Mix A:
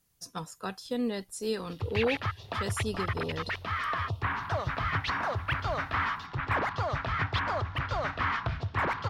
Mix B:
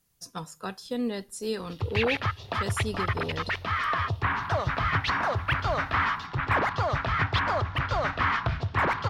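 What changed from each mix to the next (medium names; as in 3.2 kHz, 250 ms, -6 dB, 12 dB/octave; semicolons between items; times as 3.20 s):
background +3.5 dB; reverb: on, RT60 0.50 s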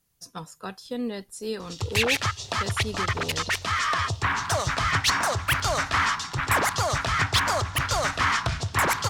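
speech: send -9.5 dB; background: remove distance through air 330 m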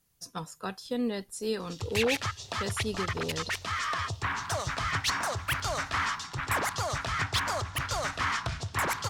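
background -6.5 dB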